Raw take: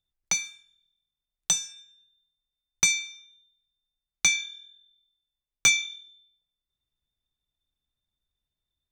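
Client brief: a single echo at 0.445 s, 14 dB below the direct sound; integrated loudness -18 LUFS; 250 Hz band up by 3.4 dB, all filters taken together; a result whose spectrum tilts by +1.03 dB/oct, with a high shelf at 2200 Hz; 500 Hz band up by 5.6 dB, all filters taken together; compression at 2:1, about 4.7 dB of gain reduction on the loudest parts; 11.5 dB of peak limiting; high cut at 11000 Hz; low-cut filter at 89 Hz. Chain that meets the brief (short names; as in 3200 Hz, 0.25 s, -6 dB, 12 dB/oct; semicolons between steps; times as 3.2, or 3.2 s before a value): HPF 89 Hz; LPF 11000 Hz; bell 250 Hz +4 dB; bell 500 Hz +6.5 dB; high shelf 2200 Hz -7.5 dB; compressor 2:1, threshold -30 dBFS; limiter -25 dBFS; echo 0.445 s -14 dB; gain +21 dB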